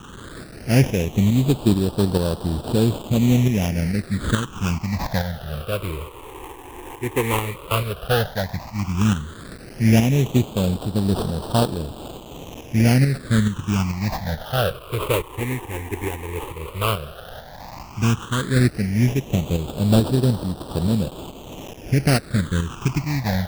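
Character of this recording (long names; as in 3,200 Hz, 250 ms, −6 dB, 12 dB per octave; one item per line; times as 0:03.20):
a quantiser's noise floor 6 bits, dither triangular
tremolo saw up 2.3 Hz, depth 50%
aliases and images of a low sample rate 2,100 Hz, jitter 20%
phaser sweep stages 8, 0.11 Hz, lowest notch 180–2,100 Hz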